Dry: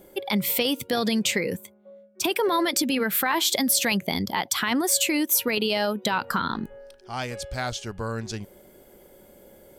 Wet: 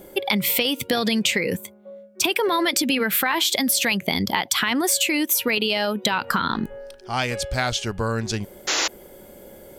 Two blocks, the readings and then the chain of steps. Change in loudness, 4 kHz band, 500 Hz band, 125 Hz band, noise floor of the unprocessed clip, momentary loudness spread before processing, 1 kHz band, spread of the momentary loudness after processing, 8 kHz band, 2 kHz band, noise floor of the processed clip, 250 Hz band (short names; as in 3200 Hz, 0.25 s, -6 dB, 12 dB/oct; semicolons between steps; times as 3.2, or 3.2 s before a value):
+2.5 dB, +4.5 dB, +2.0 dB, +4.0 dB, -53 dBFS, 12 LU, +2.5 dB, 8 LU, +2.0 dB, +5.0 dB, -47 dBFS, +2.0 dB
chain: dynamic EQ 2600 Hz, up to +5 dB, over -40 dBFS, Q 1.1; compressor, threshold -25 dBFS, peak gain reduction 8.5 dB; painted sound noise, 8.67–8.88, 280–7300 Hz -29 dBFS; gain +7 dB